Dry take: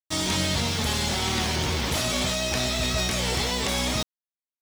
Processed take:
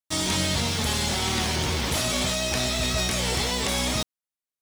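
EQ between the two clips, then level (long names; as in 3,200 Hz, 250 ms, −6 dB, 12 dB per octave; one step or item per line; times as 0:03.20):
parametric band 9,600 Hz +3.5 dB 0.69 octaves
0.0 dB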